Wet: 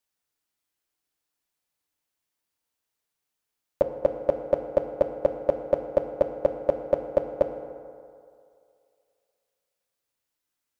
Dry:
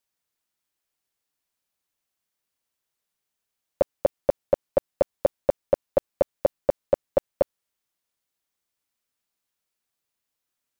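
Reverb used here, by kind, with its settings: FDN reverb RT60 2.4 s, low-frequency decay 0.75×, high-frequency decay 0.45×, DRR 5 dB; trim -1.5 dB

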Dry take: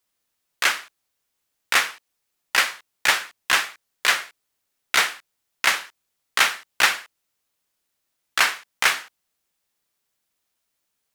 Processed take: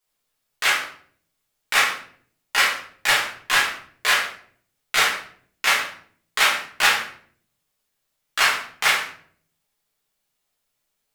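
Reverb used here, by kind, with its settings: simulated room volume 66 m³, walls mixed, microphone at 1.4 m; trim -5 dB

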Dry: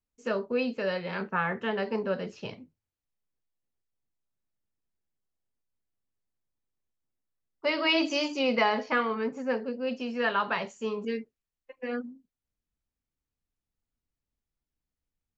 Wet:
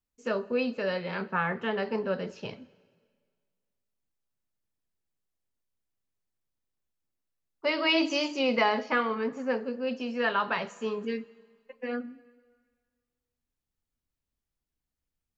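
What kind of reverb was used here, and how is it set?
plate-style reverb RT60 1.8 s, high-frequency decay 0.95×, DRR 19 dB

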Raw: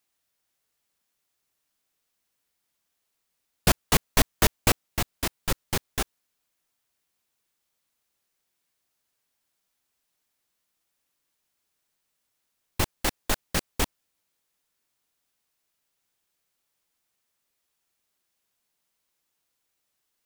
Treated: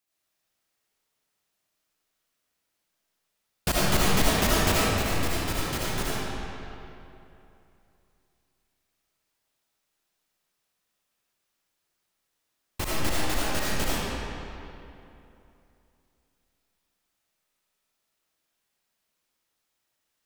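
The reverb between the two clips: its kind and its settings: algorithmic reverb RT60 2.9 s, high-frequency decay 0.7×, pre-delay 35 ms, DRR -8 dB; trim -6.5 dB

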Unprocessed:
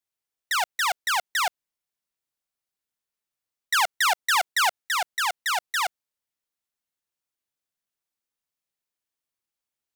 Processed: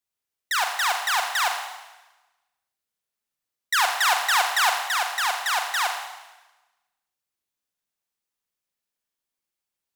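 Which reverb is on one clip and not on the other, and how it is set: Schroeder reverb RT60 1.1 s, combs from 31 ms, DRR 3 dB

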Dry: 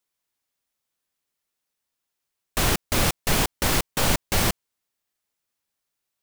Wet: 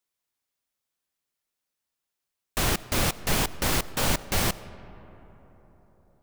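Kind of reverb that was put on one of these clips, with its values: algorithmic reverb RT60 4.3 s, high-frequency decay 0.35×, pre-delay 40 ms, DRR 16.5 dB; trim -3 dB

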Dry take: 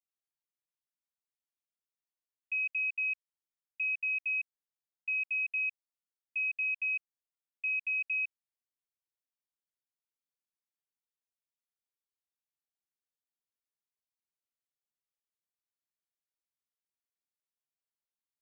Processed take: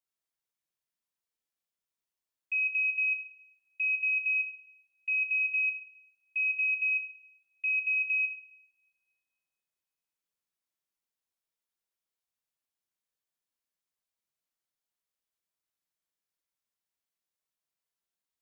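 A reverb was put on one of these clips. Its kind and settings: two-slope reverb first 0.75 s, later 1.9 s, from -25 dB, DRR 2.5 dB; trim +1 dB

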